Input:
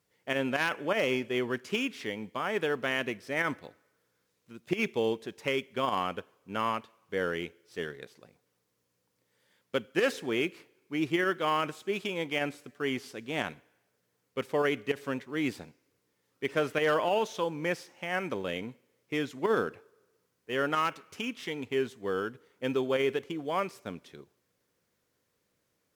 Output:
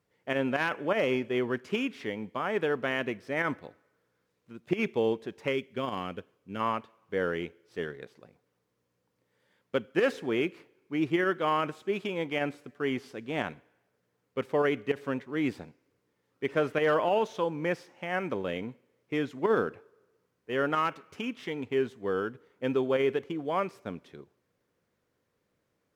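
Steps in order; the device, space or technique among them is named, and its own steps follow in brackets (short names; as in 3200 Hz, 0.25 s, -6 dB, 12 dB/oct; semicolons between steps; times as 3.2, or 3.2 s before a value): through cloth (high shelf 3300 Hz -11.5 dB); 5.52–6.59 bell 920 Hz -5 dB -> -12 dB 1.6 oct; gain +2 dB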